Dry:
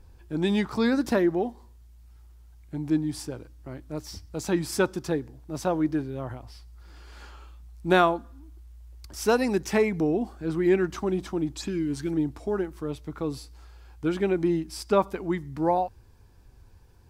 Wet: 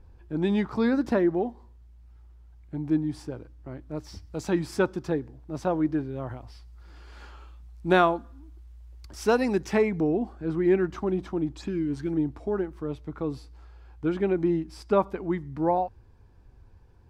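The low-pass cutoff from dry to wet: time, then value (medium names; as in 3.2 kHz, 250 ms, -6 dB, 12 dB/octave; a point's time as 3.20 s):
low-pass 6 dB/octave
3.86 s 1.8 kHz
4.38 s 4.2 kHz
4.80 s 2.2 kHz
5.99 s 2.2 kHz
6.42 s 4.1 kHz
9.55 s 4.1 kHz
10.09 s 1.8 kHz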